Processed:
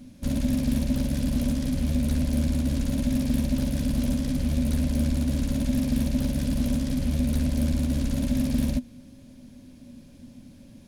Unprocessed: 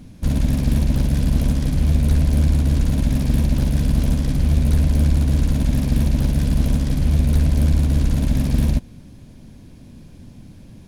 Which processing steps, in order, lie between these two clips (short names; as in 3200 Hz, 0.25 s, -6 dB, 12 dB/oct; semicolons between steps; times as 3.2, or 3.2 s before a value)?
tilt shelf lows -4 dB, about 1500 Hz; small resonant body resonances 250/560 Hz, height 14 dB, ringing for 85 ms; gain -6.5 dB